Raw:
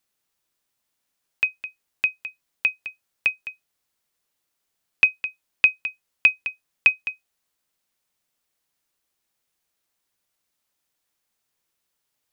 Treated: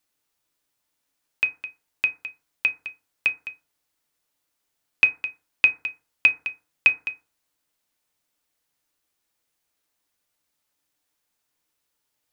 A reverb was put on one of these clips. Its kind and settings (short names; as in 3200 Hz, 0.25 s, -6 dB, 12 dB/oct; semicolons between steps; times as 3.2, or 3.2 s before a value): FDN reverb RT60 0.38 s, low-frequency decay 1×, high-frequency decay 0.4×, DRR 7 dB